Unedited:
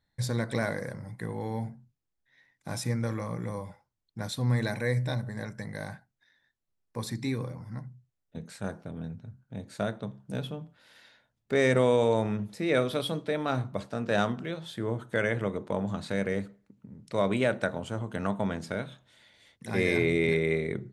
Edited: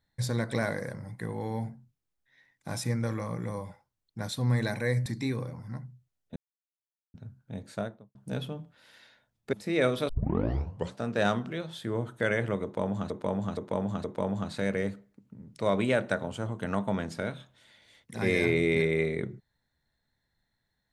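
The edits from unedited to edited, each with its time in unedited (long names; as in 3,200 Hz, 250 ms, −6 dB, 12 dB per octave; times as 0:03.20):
0:05.06–0:07.08: remove
0:08.38–0:09.16: silence
0:09.66–0:10.17: fade out and dull
0:11.55–0:12.46: remove
0:13.02: tape start 0.87 s
0:15.56–0:16.03: repeat, 4 plays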